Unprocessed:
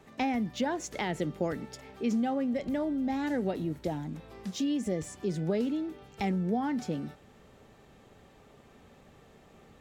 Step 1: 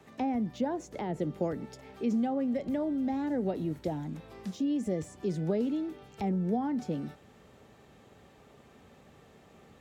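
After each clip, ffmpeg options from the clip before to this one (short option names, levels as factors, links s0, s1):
-filter_complex "[0:a]highpass=55,acrossover=split=370|960[s0][s1][s2];[s2]acompressor=threshold=0.00316:ratio=6[s3];[s0][s1][s3]amix=inputs=3:normalize=0"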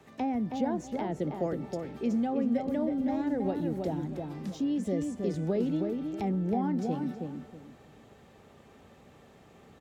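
-filter_complex "[0:a]asplit=2[s0][s1];[s1]adelay=320,lowpass=f=1700:p=1,volume=0.631,asplit=2[s2][s3];[s3]adelay=320,lowpass=f=1700:p=1,volume=0.27,asplit=2[s4][s5];[s5]adelay=320,lowpass=f=1700:p=1,volume=0.27,asplit=2[s6][s7];[s7]adelay=320,lowpass=f=1700:p=1,volume=0.27[s8];[s0][s2][s4][s6][s8]amix=inputs=5:normalize=0"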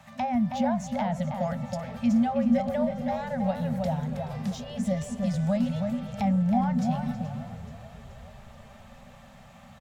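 -filter_complex "[0:a]afftfilt=real='re*(1-between(b*sr/4096,250,530))':imag='im*(1-between(b*sr/4096,250,530))':win_size=4096:overlap=0.75,asplit=7[s0][s1][s2][s3][s4][s5][s6];[s1]adelay=427,afreqshift=-36,volume=0.158[s7];[s2]adelay=854,afreqshift=-72,volume=0.1[s8];[s3]adelay=1281,afreqshift=-108,volume=0.0631[s9];[s4]adelay=1708,afreqshift=-144,volume=0.0398[s10];[s5]adelay=2135,afreqshift=-180,volume=0.0248[s11];[s6]adelay=2562,afreqshift=-216,volume=0.0157[s12];[s0][s7][s8][s9][s10][s11][s12]amix=inputs=7:normalize=0,volume=2.11"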